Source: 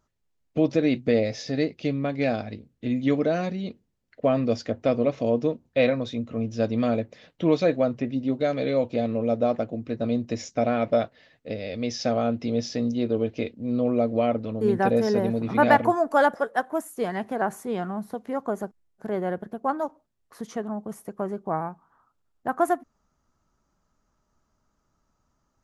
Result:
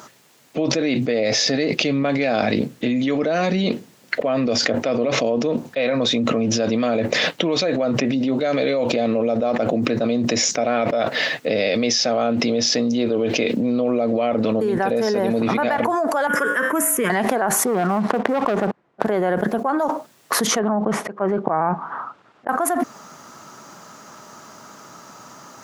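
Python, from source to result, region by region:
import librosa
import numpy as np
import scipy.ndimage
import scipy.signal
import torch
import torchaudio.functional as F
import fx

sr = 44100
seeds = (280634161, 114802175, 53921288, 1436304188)

y = fx.chain(x, sr, fx.fixed_phaser(hz=1800.0, stages=4),
    fx.comb_fb(f0_hz=58.0, decay_s=0.36, harmonics='odd', damping=0.0, mix_pct=50),
    fx.band_squash(depth_pct=100), at=(16.27, 17.1))
y = fx.chain(y, sr, fx.lowpass(hz=1400.0, slope=12),
    fx.leveller(passes=2), at=(17.65, 19.06))
y = fx.chain(y, sr, fx.lowpass(hz=2700.0, slope=12),
    fx.auto_swell(attack_ms=455.0), at=(20.59, 22.49))
y = scipy.signal.sosfilt(scipy.signal.butter(4, 130.0, 'highpass', fs=sr, output='sos'), y)
y = fx.low_shelf(y, sr, hz=330.0, db=-10.0)
y = fx.env_flatten(y, sr, amount_pct=100)
y = y * librosa.db_to_amplitude(-4.5)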